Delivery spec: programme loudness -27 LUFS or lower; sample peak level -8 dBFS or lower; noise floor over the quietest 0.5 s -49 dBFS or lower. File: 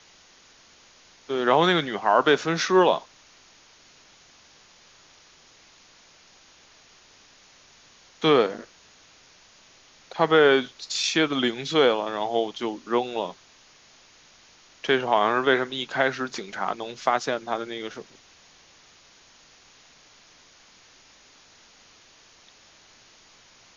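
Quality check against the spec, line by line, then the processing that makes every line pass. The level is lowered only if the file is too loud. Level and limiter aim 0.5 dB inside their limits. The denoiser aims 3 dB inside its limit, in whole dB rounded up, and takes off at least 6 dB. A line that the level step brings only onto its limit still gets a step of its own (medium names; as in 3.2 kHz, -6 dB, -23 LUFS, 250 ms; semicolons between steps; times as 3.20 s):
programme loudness -23.5 LUFS: fail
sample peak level -5.0 dBFS: fail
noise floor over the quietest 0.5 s -55 dBFS: pass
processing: trim -4 dB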